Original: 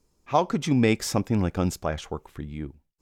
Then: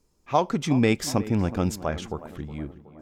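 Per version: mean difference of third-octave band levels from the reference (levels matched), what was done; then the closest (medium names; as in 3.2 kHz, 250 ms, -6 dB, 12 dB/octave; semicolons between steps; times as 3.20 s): 2.5 dB: tape echo 367 ms, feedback 63%, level -14 dB, low-pass 1.5 kHz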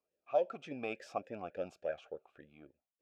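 7.5 dB: talking filter a-e 3.5 Hz; trim -1.5 dB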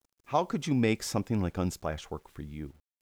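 1.0 dB: bit crusher 10-bit; trim -5.5 dB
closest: third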